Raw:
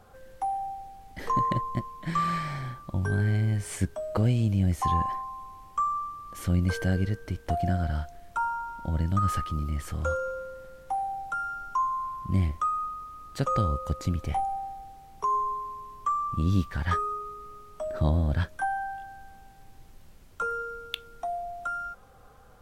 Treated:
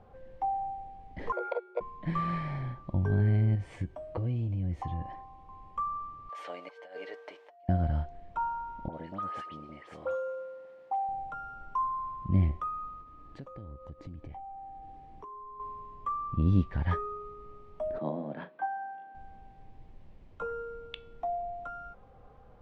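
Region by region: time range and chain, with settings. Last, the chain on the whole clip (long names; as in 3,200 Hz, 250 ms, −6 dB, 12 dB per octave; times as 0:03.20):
0:01.32–0:01.81: output level in coarse steps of 14 dB + frequency shifter +360 Hz + expander for the loud parts, over −39 dBFS
0:03.55–0:05.49: downward compressor 3 to 1, threshold −28 dBFS + notch comb filter 210 Hz
0:06.29–0:07.69: high-pass filter 570 Hz 24 dB per octave + compressor whose output falls as the input rises −41 dBFS, ratio −0.5 + comb filter 6.8 ms, depth 53%
0:08.88–0:11.09: high-pass filter 420 Hz + all-pass dispersion highs, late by 69 ms, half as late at 2,200 Hz
0:13.01–0:15.60: downward compressor 5 to 1, threshold −42 dBFS + hollow resonant body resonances 300/1,700 Hz, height 7 dB
0:17.98–0:19.15: Bessel high-pass filter 310 Hz, order 8 + high-frequency loss of the air 260 metres + double-tracking delay 39 ms −12 dB
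whole clip: low-pass filter 2,000 Hz 12 dB per octave; parametric band 1,400 Hz −9.5 dB 0.62 octaves; hum removal 377.6 Hz, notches 39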